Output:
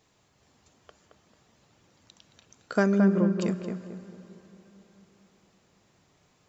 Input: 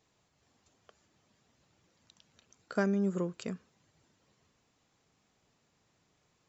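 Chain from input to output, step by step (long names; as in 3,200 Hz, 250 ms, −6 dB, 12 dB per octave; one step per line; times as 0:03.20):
0:03.00–0:03.41: high-frequency loss of the air 240 metres
on a send: feedback echo with a low-pass in the loop 221 ms, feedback 38%, low-pass 1,600 Hz, level −4 dB
on the sum: dense smooth reverb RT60 4.1 s, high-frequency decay 0.95×, DRR 15 dB
level +6.5 dB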